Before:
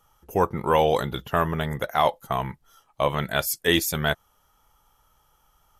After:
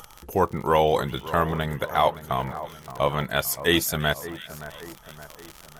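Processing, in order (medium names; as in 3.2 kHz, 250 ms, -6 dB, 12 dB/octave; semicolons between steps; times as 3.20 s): crackle 70 per s -34 dBFS; upward compressor, threshold -33 dBFS; two-band feedback delay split 1.8 kHz, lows 571 ms, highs 344 ms, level -14 dB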